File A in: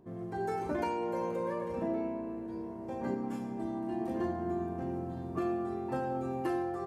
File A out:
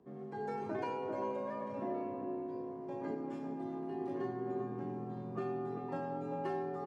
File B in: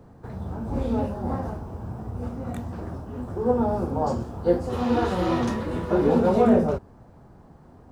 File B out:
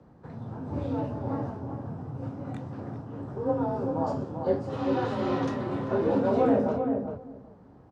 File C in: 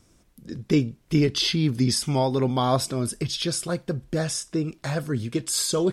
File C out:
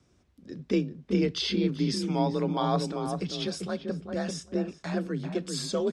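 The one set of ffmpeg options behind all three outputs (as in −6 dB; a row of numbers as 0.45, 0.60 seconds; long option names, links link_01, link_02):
-filter_complex "[0:a]afreqshift=35,lowpass=5500,asplit=2[link_01][link_02];[link_02]adelay=392,lowpass=frequency=920:poles=1,volume=-4dB,asplit=2[link_03][link_04];[link_04]adelay=392,lowpass=frequency=920:poles=1,volume=0.16,asplit=2[link_05][link_06];[link_06]adelay=392,lowpass=frequency=920:poles=1,volume=0.16[link_07];[link_01][link_03][link_05][link_07]amix=inputs=4:normalize=0,volume=-5.5dB"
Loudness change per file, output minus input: −4.5, −4.5, −5.0 LU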